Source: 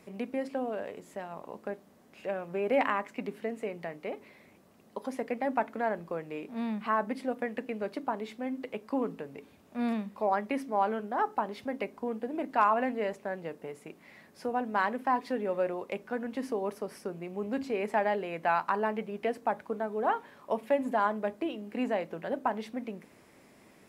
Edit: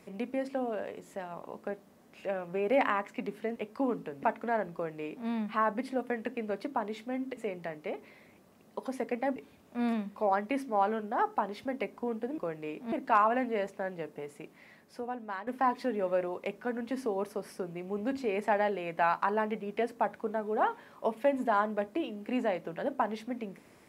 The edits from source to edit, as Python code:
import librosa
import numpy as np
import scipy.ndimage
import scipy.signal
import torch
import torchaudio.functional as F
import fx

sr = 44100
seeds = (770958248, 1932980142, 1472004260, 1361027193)

y = fx.edit(x, sr, fx.swap(start_s=3.56, length_s=1.99, other_s=8.69, other_length_s=0.67),
    fx.duplicate(start_s=6.06, length_s=0.54, to_s=12.38),
    fx.fade_out_to(start_s=13.87, length_s=1.06, floor_db=-13.5), tone=tone)